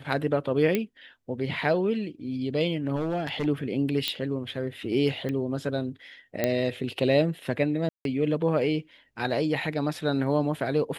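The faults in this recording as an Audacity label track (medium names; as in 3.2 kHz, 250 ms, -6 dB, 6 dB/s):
0.750000	0.750000	pop -12 dBFS
2.950000	3.470000	clipped -23.5 dBFS
4.080000	4.080000	pop -12 dBFS
5.290000	5.290000	pop -20 dBFS
6.440000	6.440000	pop -10 dBFS
7.890000	8.050000	dropout 162 ms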